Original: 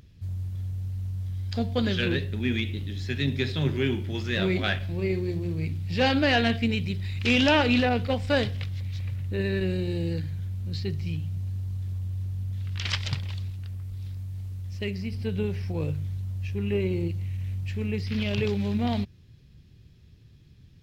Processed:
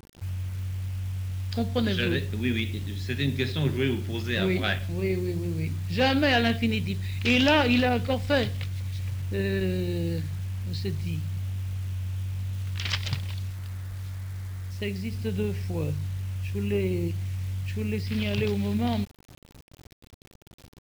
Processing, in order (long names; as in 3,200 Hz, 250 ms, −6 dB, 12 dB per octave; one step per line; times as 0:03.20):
bit-depth reduction 8 bits, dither none